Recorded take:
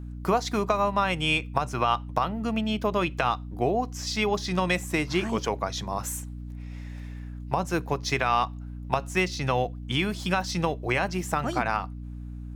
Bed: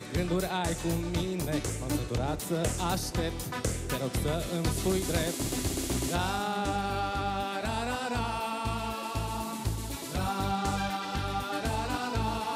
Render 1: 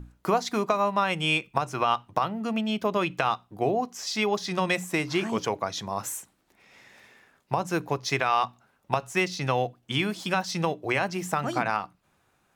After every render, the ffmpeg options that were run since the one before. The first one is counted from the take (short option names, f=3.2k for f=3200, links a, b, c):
-af "bandreject=f=60:t=h:w=6,bandreject=f=120:t=h:w=6,bandreject=f=180:t=h:w=6,bandreject=f=240:t=h:w=6,bandreject=f=300:t=h:w=6"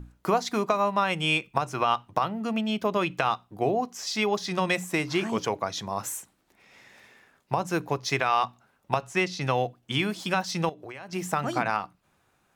-filter_complex "[0:a]asettb=1/sr,asplit=3[a][b][c];[a]atrim=end=9.014[d];[b]atrim=start=9.01:end=9.41,asetpts=PTS-STARTPTS,afade=t=in:d=0.004:c=qsin,afade=t=out:st=0.396:d=0.004:c=qsin,highshelf=f=11k:g=-12[e];[c]atrim=start=9.406[f];[d][e]acrossfade=d=0.004:c1=hsin:c2=qsin[g];[g][f]acrossfade=d=0.004:c1=qsin:c2=hsin,asettb=1/sr,asplit=3[h][i][j];[h]atrim=end=10.694[k];[i]atrim=start=10.69:end=11.13,asetpts=PTS-STARTPTS,afade=t=in:d=0.004:c=qsin,afade=t=out:st=0.436:d=0.004:c=qsin,acompressor=threshold=-38dB:ratio=5:attack=3.2:release=140:knee=1:detection=peak[l];[j]atrim=start=11.126[m];[k][l]acrossfade=d=0.004:c1=hsin:c2=qsin[n];[n][m]acrossfade=d=0.004:c1=qsin:c2=hsin"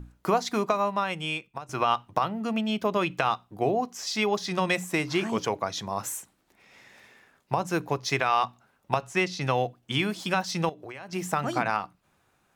-filter_complex "[0:a]asplit=2[a][b];[a]atrim=end=1.69,asetpts=PTS-STARTPTS,afade=t=out:st=0.63:d=1.06:silence=0.188365[c];[b]atrim=start=1.69,asetpts=PTS-STARTPTS,afade=t=in:d=0.004:c=hsin:silence=0.188365[d];[c][d]concat=n=2:v=0:a=1"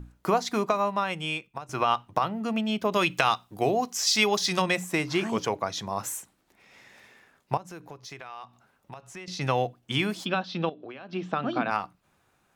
-filter_complex "[0:a]asettb=1/sr,asplit=3[a][b][c];[a]atrim=end=2.924[d];[b]atrim=start=2.92:end=4.62,asetpts=PTS-STARTPTS,afade=t=in:d=0.004:c=qsin,afade=t=out:st=1.696:d=0.004:c=qsin,highshelf=f=2.4k:g=10.5[e];[c]atrim=start=4.616[f];[d][e]acrossfade=d=0.004:c1=hsin:c2=qsin[g];[g][f]acrossfade=d=0.004:c1=qsin:c2=hsin,asettb=1/sr,asplit=3[h][i][j];[h]atrim=end=7.574[k];[i]atrim=start=7.57:end=9.28,asetpts=PTS-STARTPTS,afade=t=in:d=0.004:c=qsin,afade=t=out:st=1.706:d=0.004:c=qsin,acompressor=threshold=-44dB:ratio=3:attack=3.2:release=140:knee=1:detection=peak[l];[j]atrim=start=9.276[m];[k][l]acrossfade=d=0.004:c1=hsin:c2=qsin[n];[n][m]acrossfade=d=0.004:c1=qsin:c2=hsin,asplit=3[o][p][q];[o]afade=t=out:st=10.24:d=0.02[r];[p]highpass=170,equalizer=f=250:t=q:w=4:g=7,equalizer=f=910:t=q:w=4:g=-6,equalizer=f=2k:t=q:w=4:g=-9,equalizer=f=3.6k:t=q:w=4:g=5,lowpass=f=3.7k:w=0.5412,lowpass=f=3.7k:w=1.3066,afade=t=in:st=10.24:d=0.02,afade=t=out:st=11.7:d=0.02[s];[q]afade=t=in:st=11.7:d=0.02[t];[r][s][t]amix=inputs=3:normalize=0"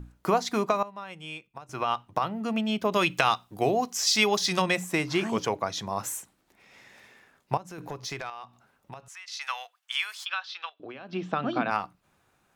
-filter_complex "[0:a]asettb=1/sr,asplit=3[a][b][c];[a]atrim=end=7.784[d];[b]atrim=start=7.78:end=8.3,asetpts=PTS-STARTPTS,afade=t=in:d=0.004:c=qsin,afade=t=out:st=0.516:d=0.004:c=qsin,aeval=exprs='0.0531*sin(PI/2*1.58*val(0)/0.0531)':c=same[e];[c]atrim=start=8.296[f];[d][e]acrossfade=d=0.004:c1=hsin:c2=qsin[g];[g][f]acrossfade=d=0.004:c1=qsin:c2=hsin,asettb=1/sr,asplit=3[h][i][j];[h]atrim=end=9.084[k];[i]atrim=start=9.08:end=10.8,asetpts=PTS-STARTPTS,afade=t=in:d=0.004:c=qsin,afade=t=out:st=1.716:d=0.004:c=qsin,highpass=f=1.1k:w=0.5412,highpass=f=1.1k:w=1.3066[l];[j]atrim=start=10.796[m];[k][l]acrossfade=d=0.004:c1=hsin:c2=qsin[n];[n][m]acrossfade=d=0.004:c1=qsin:c2=hsin,asplit=2[o][p];[o]atrim=end=0.83,asetpts=PTS-STARTPTS,afade=t=out:st=0.826:d=0.004:c=hsin:silence=0.149624[q];[p]atrim=start=0.83,asetpts=PTS-STARTPTS,afade=t=in:d=1.77:silence=0.149624[r];[q][r]concat=n=2:v=0:a=1"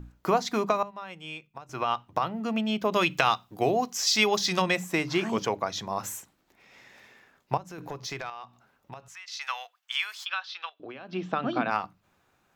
-af "equalizer=f=9.4k:w=2.9:g=-8.5,bandreject=f=50:t=h:w=6,bandreject=f=100:t=h:w=6,bandreject=f=150:t=h:w=6,bandreject=f=200:t=h:w=6"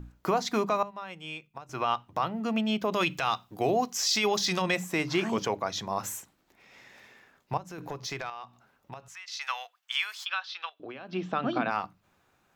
-af "alimiter=limit=-16.5dB:level=0:latency=1:release=14"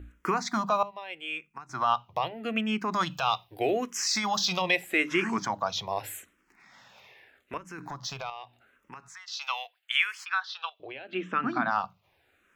-filter_complex "[0:a]acrossover=split=2700[a][b];[a]crystalizer=i=8:c=0[c];[c][b]amix=inputs=2:normalize=0,asplit=2[d][e];[e]afreqshift=-0.81[f];[d][f]amix=inputs=2:normalize=1"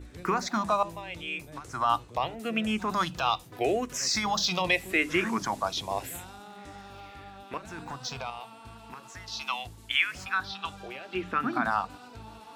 -filter_complex "[1:a]volume=-15.5dB[a];[0:a][a]amix=inputs=2:normalize=0"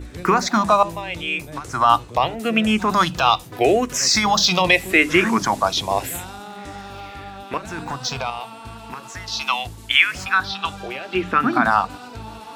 -af "volume=10.5dB,alimiter=limit=-1dB:level=0:latency=1"